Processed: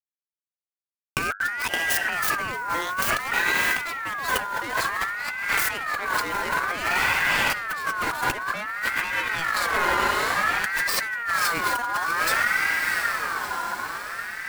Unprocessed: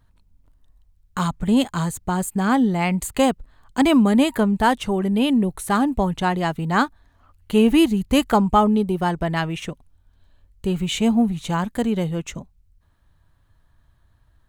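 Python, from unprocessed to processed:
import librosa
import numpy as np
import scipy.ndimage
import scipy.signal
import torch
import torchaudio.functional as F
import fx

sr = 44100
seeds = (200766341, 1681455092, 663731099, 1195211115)

p1 = fx.tracing_dist(x, sr, depth_ms=0.24)
p2 = fx.high_shelf(p1, sr, hz=4400.0, db=7.0)
p3 = fx.level_steps(p2, sr, step_db=20)
p4 = p2 + F.gain(torch.from_numpy(p3), 1.0).numpy()
p5 = fx.quant_dither(p4, sr, seeds[0], bits=6, dither='none')
p6 = 10.0 ** (-15.0 / 20.0) * np.tanh(p5 / 10.0 ** (-15.0 / 20.0))
p7 = p6 + fx.echo_diffused(p6, sr, ms=667, feedback_pct=60, wet_db=-7.0, dry=0)
p8 = fx.over_compress(p7, sr, threshold_db=-26.0, ratio=-1.0)
p9 = fx.hum_notches(p8, sr, base_hz=50, count=3)
p10 = fx.ring_lfo(p9, sr, carrier_hz=1500.0, swing_pct=20, hz=0.55)
y = F.gain(torch.from_numpy(p10), 3.0).numpy()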